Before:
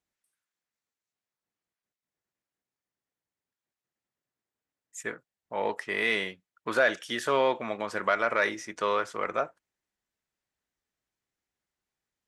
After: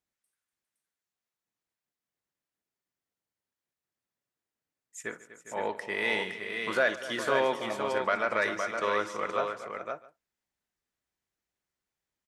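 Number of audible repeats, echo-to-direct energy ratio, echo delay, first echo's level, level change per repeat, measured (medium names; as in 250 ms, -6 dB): 6, -4.0 dB, 58 ms, -18.5 dB, no regular repeats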